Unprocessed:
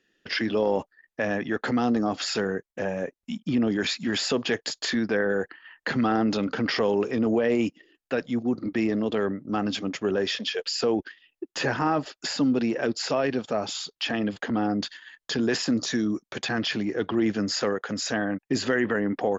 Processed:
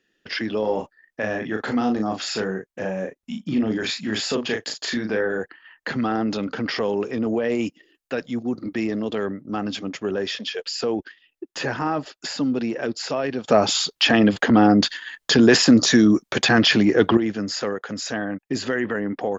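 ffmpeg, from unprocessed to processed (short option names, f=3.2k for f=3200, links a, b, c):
-filter_complex "[0:a]asettb=1/sr,asplit=3[a][b][c];[a]atrim=end=0.604[d];[b]atrim=start=0.6:end=5.39,asetpts=PTS-STARTPTS,afade=t=in:d=0.004:c=qsin,afade=t=out:st=4.786:d=0.004:c=qsin,asplit=2[e][f];[f]adelay=37,volume=-5dB[g];[e][g]amix=inputs=2:normalize=0,atrim=end_sample=211239[h];[c]atrim=start=5.386[i];[d][h]acrossfade=d=0.004:c1=hsin:c2=qsin[j];[j][i]acrossfade=d=0.004:c1=qsin:c2=hsin,asettb=1/sr,asplit=3[k][l][m];[k]atrim=end=7.464[n];[l]atrim=start=7.46:end=9.41,asetpts=PTS-STARTPTS,afade=t=in:d=0.004:c=qsin,afade=t=out:st=1.946:d=0.004:c=qsin,highshelf=f=4.6k:g=5.5[o];[m]atrim=start=9.406[p];[n][o]acrossfade=d=0.004:c1=hsin:c2=qsin[q];[q][p]acrossfade=d=0.004:c1=qsin:c2=hsin,asplit=3[r][s][t];[r]atrim=end=13.482[u];[s]atrim=start=13.478:end=17.172,asetpts=PTS-STARTPTS,volume=11dB[v];[t]atrim=start=17.168[w];[u][v]acrossfade=d=0.004:c1=hsin:c2=hsin[x];[x][w]acrossfade=d=0.004:c1=hsin:c2=hsin"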